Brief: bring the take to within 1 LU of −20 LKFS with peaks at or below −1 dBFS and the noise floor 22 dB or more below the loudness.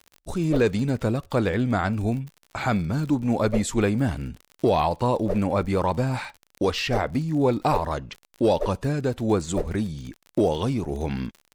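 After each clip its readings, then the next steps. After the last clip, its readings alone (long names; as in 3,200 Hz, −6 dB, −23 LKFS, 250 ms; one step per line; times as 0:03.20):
crackle rate 48 per second; integrated loudness −25.0 LKFS; sample peak −10.5 dBFS; target loudness −20.0 LKFS
→ click removal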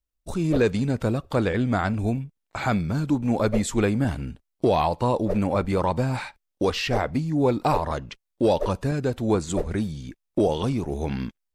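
crackle rate 0.26 per second; integrated loudness −25.0 LKFS; sample peak −10.5 dBFS; target loudness −20.0 LKFS
→ level +5 dB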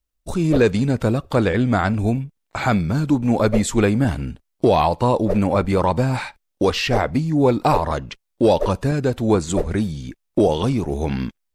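integrated loudness −20.0 LKFS; sample peak −5.5 dBFS; background noise floor −75 dBFS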